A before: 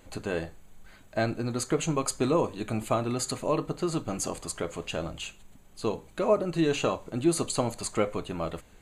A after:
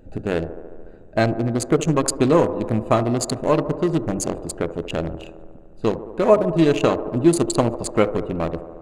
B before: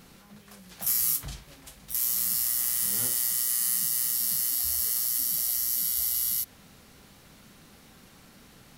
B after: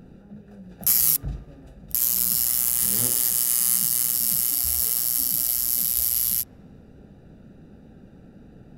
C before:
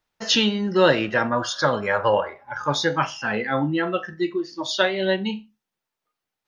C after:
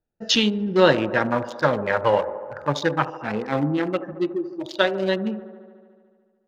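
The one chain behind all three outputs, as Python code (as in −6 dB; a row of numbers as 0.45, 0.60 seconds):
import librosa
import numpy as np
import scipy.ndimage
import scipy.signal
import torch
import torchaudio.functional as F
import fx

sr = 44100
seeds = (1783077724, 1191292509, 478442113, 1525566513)

y = fx.wiener(x, sr, points=41)
y = fx.echo_wet_bandpass(y, sr, ms=73, feedback_pct=77, hz=550.0, wet_db=-12.0)
y = y * 10.0 ** (-2 / 20.0) / np.max(np.abs(y))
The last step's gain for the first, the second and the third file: +9.5, +9.0, +1.5 decibels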